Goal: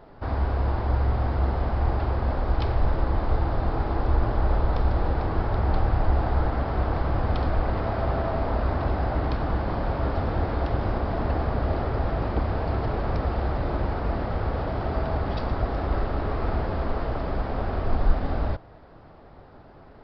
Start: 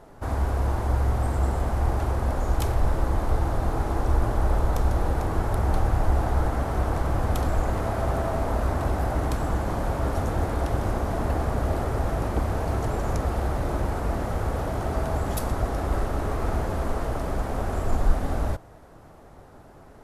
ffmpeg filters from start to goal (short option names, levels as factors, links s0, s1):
-af "aresample=11025,aresample=44100"